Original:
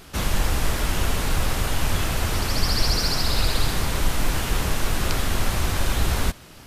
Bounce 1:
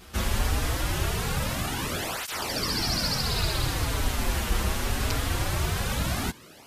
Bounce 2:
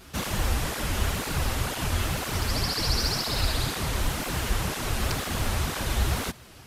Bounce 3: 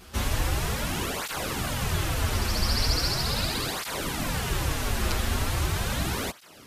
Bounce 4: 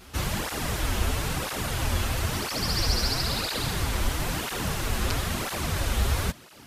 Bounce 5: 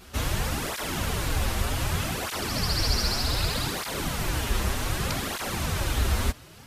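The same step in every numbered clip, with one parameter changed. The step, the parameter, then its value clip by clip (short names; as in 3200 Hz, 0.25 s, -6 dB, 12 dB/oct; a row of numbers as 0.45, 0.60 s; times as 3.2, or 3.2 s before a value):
tape flanging out of phase, nulls at: 0.22, 2, 0.39, 1, 0.65 Hz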